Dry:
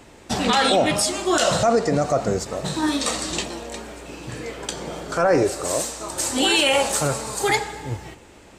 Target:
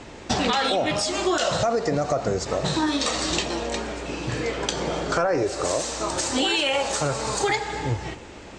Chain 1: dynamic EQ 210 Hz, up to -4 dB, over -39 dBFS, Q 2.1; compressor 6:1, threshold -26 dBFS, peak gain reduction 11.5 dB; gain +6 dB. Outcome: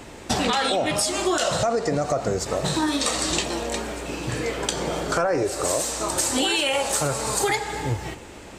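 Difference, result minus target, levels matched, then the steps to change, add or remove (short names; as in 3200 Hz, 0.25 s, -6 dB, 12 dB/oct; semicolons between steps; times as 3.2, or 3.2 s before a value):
8000 Hz band +3.5 dB
add after compressor: LPF 7000 Hz 24 dB/oct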